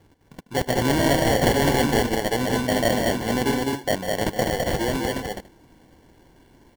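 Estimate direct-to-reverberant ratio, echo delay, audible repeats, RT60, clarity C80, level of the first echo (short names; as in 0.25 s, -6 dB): none, 0.148 s, 3, none, none, -9.5 dB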